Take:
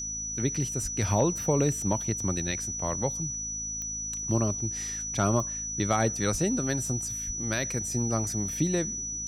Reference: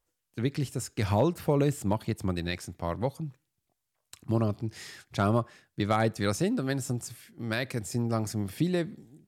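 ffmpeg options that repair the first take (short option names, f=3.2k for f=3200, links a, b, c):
-filter_complex "[0:a]adeclick=t=4,bandreject=f=53.9:t=h:w=4,bandreject=f=107.8:t=h:w=4,bandreject=f=161.7:t=h:w=4,bandreject=f=215.6:t=h:w=4,bandreject=f=269.5:t=h:w=4,bandreject=f=5.9k:w=30,asplit=3[a][b][c];[a]afade=t=out:st=0.82:d=0.02[d];[b]highpass=f=140:w=0.5412,highpass=f=140:w=1.3066,afade=t=in:st=0.82:d=0.02,afade=t=out:st=0.94:d=0.02[e];[c]afade=t=in:st=0.94:d=0.02[f];[d][e][f]amix=inputs=3:normalize=0,asplit=3[g][h][i];[g]afade=t=out:st=6.31:d=0.02[j];[h]highpass=f=140:w=0.5412,highpass=f=140:w=1.3066,afade=t=in:st=6.31:d=0.02,afade=t=out:st=6.43:d=0.02[k];[i]afade=t=in:st=6.43:d=0.02[l];[j][k][l]amix=inputs=3:normalize=0,asplit=3[m][n][o];[m]afade=t=out:st=7.26:d=0.02[p];[n]highpass=f=140:w=0.5412,highpass=f=140:w=1.3066,afade=t=in:st=7.26:d=0.02,afade=t=out:st=7.38:d=0.02[q];[o]afade=t=in:st=7.38:d=0.02[r];[p][q][r]amix=inputs=3:normalize=0"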